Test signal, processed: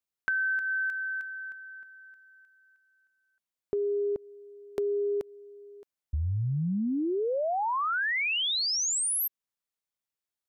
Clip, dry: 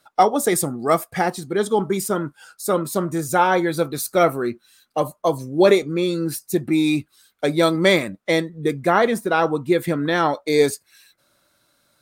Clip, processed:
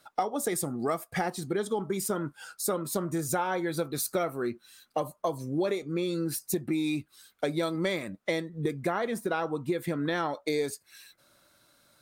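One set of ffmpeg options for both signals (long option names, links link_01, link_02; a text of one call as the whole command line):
ffmpeg -i in.wav -af "acompressor=threshold=-27dB:ratio=6" out.wav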